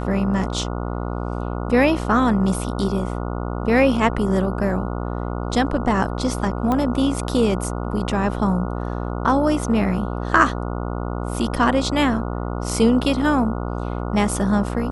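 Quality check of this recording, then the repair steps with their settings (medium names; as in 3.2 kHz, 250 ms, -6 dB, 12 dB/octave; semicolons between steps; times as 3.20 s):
buzz 60 Hz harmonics 24 -26 dBFS
6.72 s: pop -11 dBFS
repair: de-click; de-hum 60 Hz, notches 24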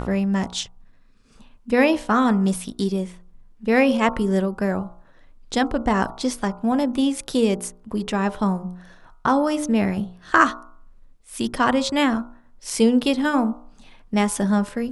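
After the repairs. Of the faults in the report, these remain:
nothing left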